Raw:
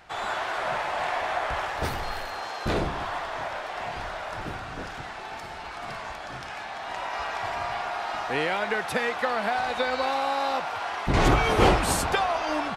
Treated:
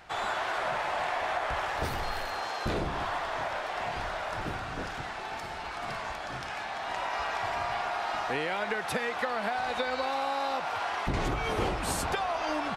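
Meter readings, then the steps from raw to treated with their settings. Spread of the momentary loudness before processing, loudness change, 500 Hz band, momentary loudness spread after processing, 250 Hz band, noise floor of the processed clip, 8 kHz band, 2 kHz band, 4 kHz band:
14 LU, -4.0 dB, -4.5 dB, 6 LU, -6.0 dB, -38 dBFS, -5.0 dB, -3.5 dB, -4.0 dB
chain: compression 6:1, threshold -27 dBFS, peak gain reduction 12 dB

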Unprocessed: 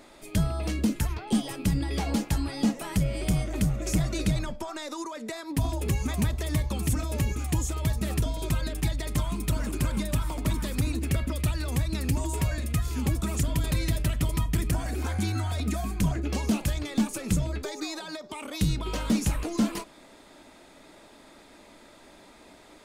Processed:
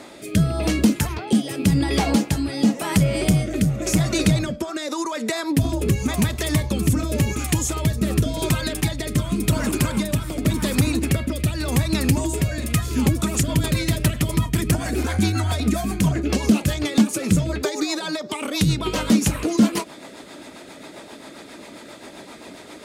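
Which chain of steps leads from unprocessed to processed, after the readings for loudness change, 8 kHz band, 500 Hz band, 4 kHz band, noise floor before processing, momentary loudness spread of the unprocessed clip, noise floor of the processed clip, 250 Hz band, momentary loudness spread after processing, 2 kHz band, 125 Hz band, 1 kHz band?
+7.5 dB, +8.5 dB, +9.5 dB, +9.0 dB, -53 dBFS, 5 LU, -41 dBFS, +9.0 dB, 20 LU, +9.0 dB, +6.5 dB, +7.0 dB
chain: high-pass 100 Hz 12 dB/octave; in parallel at +1 dB: compression, threshold -36 dBFS, peak gain reduction 15.5 dB; on the sum: rotary cabinet horn 0.9 Hz, later 7.5 Hz, at 12.48 s; trim +8 dB

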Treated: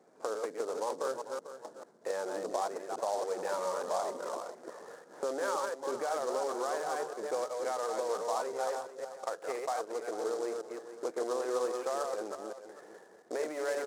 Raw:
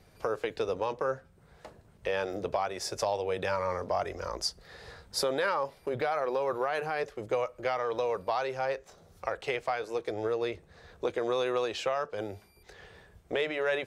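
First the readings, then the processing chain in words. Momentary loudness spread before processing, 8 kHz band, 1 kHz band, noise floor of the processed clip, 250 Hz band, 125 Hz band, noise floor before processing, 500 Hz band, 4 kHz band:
8 LU, +0.5 dB, -2.5 dB, -57 dBFS, -3.5 dB, under -15 dB, -60 dBFS, -3.0 dB, -9.0 dB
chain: chunks repeated in reverse 174 ms, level -4 dB; in parallel at -10 dB: integer overflow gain 28.5 dB; on the sum: Gaussian low-pass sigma 5.8 samples; dynamic bell 380 Hz, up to -5 dB, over -42 dBFS, Q 0.87; high-pass 260 Hz 24 dB/octave; on a send: delay 445 ms -12.5 dB; on the sum: delay time shaken by noise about 5.8 kHz, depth 0.033 ms

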